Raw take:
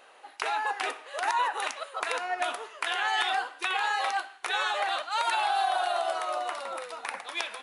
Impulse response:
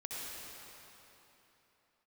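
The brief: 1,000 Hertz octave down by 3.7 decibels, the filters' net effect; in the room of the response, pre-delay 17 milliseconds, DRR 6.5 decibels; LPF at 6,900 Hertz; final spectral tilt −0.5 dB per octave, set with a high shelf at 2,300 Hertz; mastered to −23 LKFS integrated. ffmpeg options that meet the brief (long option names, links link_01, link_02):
-filter_complex "[0:a]lowpass=6900,equalizer=frequency=1000:width_type=o:gain=-3.5,highshelf=frequency=2300:gain=-8.5,asplit=2[link_01][link_02];[1:a]atrim=start_sample=2205,adelay=17[link_03];[link_02][link_03]afir=irnorm=-1:irlink=0,volume=-8dB[link_04];[link_01][link_04]amix=inputs=2:normalize=0,volume=10dB"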